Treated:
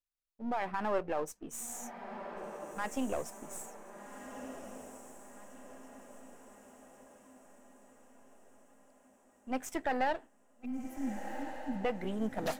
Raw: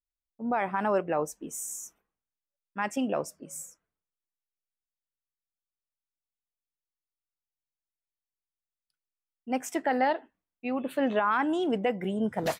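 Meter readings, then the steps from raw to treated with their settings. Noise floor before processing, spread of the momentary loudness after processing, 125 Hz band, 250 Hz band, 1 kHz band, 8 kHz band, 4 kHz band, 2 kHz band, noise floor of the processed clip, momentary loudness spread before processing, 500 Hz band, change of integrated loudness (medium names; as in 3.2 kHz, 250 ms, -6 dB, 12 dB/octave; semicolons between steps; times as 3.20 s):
under -85 dBFS, 21 LU, -6.5 dB, -7.0 dB, -7.0 dB, -5.0 dB, -6.5 dB, -7.0 dB, -67 dBFS, 14 LU, -7.5 dB, -8.5 dB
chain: partial rectifier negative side -7 dB; spectral selection erased 10.65–11.81 s, 300–10000 Hz; echo that smears into a reverb 1485 ms, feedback 51%, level -9 dB; trim -3 dB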